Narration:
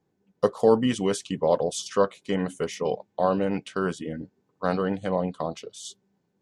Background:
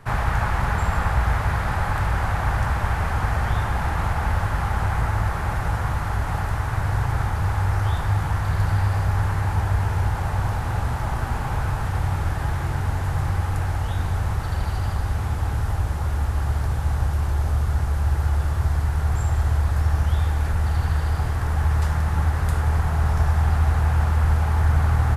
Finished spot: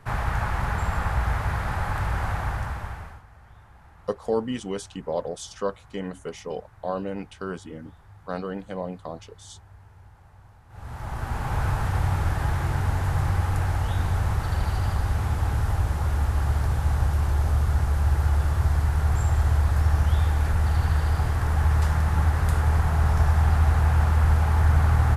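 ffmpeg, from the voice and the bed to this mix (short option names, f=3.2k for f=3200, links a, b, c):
-filter_complex "[0:a]adelay=3650,volume=-6dB[a];[1:a]volume=23.5dB,afade=t=out:st=2.31:d=0.92:silence=0.0630957,afade=t=in:st=10.69:d=0.97:silence=0.0421697[b];[a][b]amix=inputs=2:normalize=0"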